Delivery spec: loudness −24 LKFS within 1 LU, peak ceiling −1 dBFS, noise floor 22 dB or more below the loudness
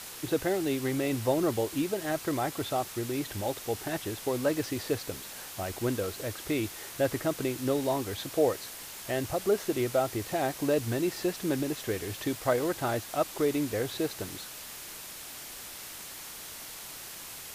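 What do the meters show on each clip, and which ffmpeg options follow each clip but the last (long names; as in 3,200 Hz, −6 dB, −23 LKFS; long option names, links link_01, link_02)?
background noise floor −44 dBFS; target noise floor −54 dBFS; integrated loudness −31.5 LKFS; sample peak −13.0 dBFS; target loudness −24.0 LKFS
→ -af "afftdn=noise_reduction=10:noise_floor=-44"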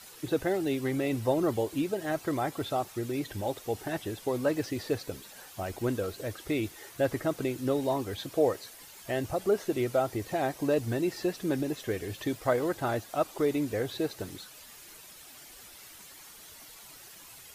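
background noise floor −50 dBFS; target noise floor −53 dBFS
→ -af "afftdn=noise_reduction=6:noise_floor=-50"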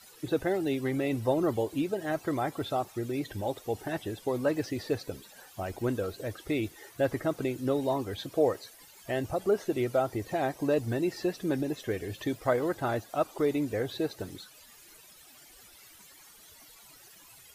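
background noise floor −55 dBFS; integrated loudness −31.5 LKFS; sample peak −13.5 dBFS; target loudness −24.0 LKFS
→ -af "volume=7.5dB"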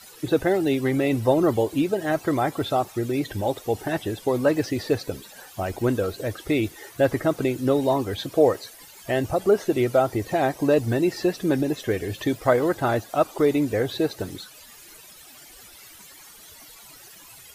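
integrated loudness −24.0 LKFS; sample peak −6.0 dBFS; background noise floor −47 dBFS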